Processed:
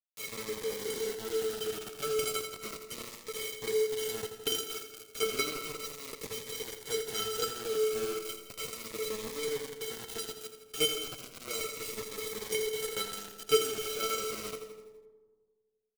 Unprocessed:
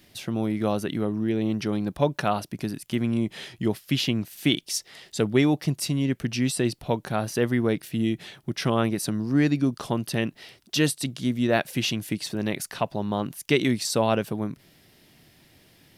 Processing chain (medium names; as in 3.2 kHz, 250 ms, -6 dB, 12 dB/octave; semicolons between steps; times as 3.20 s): comb filter that takes the minimum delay 0.34 ms; low-pass 3.5 kHz 24 dB/octave; band-stop 380 Hz, Q 12; de-hum 433 Hz, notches 3; in parallel at -2 dB: compressor with a negative ratio -30 dBFS, ratio -0.5; on the sum: companded quantiser 2-bit; feedback comb 440 Hz, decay 0.16 s, harmonics odd, mix 100%; bit crusher 7-bit; feedback delay 83 ms, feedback 54%, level -10 dB; on a send at -14.5 dB: reverberation RT60 1.6 s, pre-delay 98 ms; on the sum: Shepard-style phaser falling 0.34 Hz; trim +5 dB